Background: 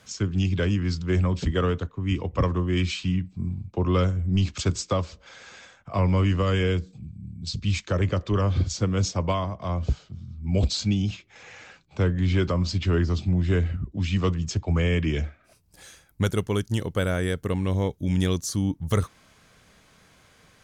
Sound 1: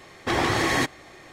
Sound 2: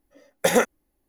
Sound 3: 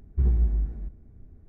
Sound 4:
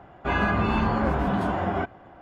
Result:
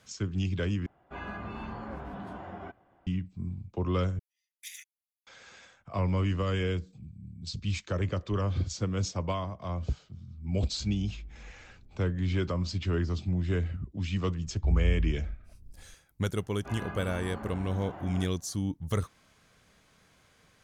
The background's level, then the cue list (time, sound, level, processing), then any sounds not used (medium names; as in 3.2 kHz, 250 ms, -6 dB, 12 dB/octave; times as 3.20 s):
background -6.5 dB
0.86 s: replace with 4 -16 dB
4.19 s: replace with 2 -16 dB + elliptic high-pass 2.2 kHz, stop band 50 dB
10.63 s: add 3 -6 dB + compression 2:1, threshold -44 dBFS
14.46 s: add 3 -16 dB + tilt EQ -3 dB/octave
16.40 s: add 4 -17 dB
not used: 1